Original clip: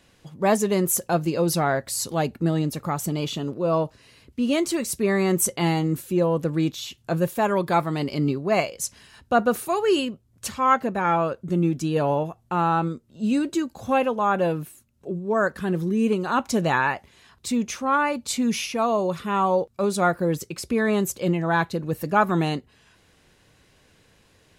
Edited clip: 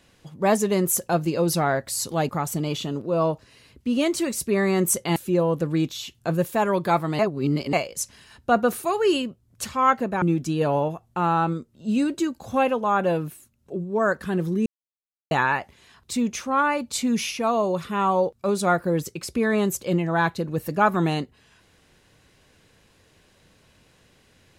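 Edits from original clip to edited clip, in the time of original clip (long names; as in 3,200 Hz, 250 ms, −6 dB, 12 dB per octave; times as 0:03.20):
0:02.29–0:02.81: remove
0:05.68–0:05.99: remove
0:08.02–0:08.56: reverse
0:11.05–0:11.57: remove
0:16.01–0:16.66: silence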